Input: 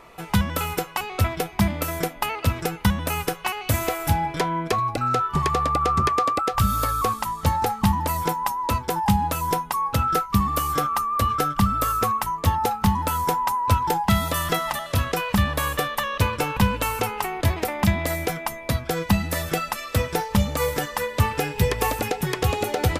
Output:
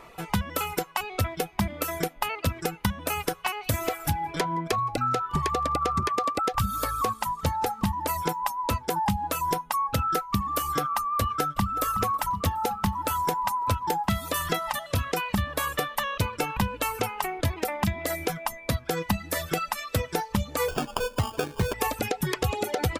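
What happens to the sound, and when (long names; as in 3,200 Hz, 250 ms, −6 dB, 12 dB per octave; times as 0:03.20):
0:02.96–0:07.87: single-tap delay 168 ms −19.5 dB
0:11.19–0:11.92: delay throw 370 ms, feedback 75%, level −14.5 dB
0:20.68–0:21.74: sample-rate reduction 2,000 Hz
whole clip: reverb reduction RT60 0.94 s; downward compressor, threshold −22 dBFS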